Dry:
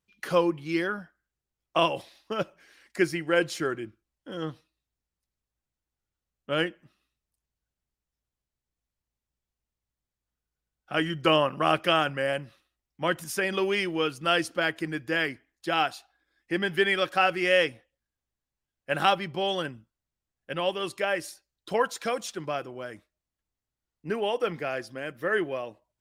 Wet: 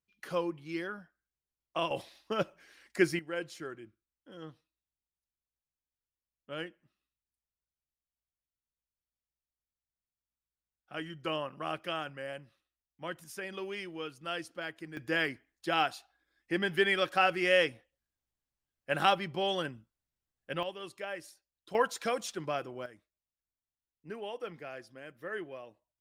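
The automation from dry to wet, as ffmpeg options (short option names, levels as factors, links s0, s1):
-af "asetnsamples=n=441:p=0,asendcmd='1.91 volume volume -2dB;3.19 volume volume -13dB;14.97 volume volume -3.5dB;20.63 volume volume -12dB;21.75 volume volume -3dB;22.86 volume volume -12.5dB',volume=0.335"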